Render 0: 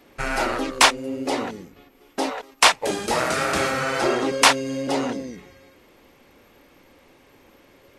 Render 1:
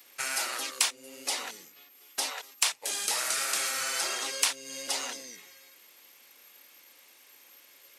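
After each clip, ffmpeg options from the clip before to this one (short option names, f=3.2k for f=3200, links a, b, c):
-filter_complex "[0:a]aderivative,acrossover=split=510|4200[a][b][c];[a]acompressor=threshold=-58dB:ratio=4[d];[b]acompressor=threshold=-41dB:ratio=4[e];[c]acompressor=threshold=-38dB:ratio=4[f];[d][e][f]amix=inputs=3:normalize=0,volume=8.5dB"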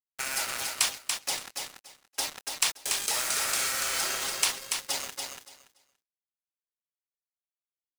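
-filter_complex "[0:a]acrusher=bits=4:mix=0:aa=0.5,asplit=2[a][b];[b]aecho=0:1:286|572|858:0.562|0.101|0.0182[c];[a][c]amix=inputs=2:normalize=0"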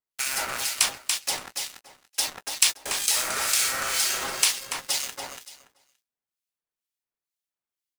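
-filter_complex "[0:a]acrossover=split=2000[a][b];[a]aeval=exprs='val(0)*(1-0.7/2+0.7/2*cos(2*PI*2.1*n/s))':c=same[c];[b]aeval=exprs='val(0)*(1-0.7/2-0.7/2*cos(2*PI*2.1*n/s))':c=same[d];[c][d]amix=inputs=2:normalize=0,asplit=2[e][f];[f]adelay=16,volume=-12dB[g];[e][g]amix=inputs=2:normalize=0,volume=6.5dB"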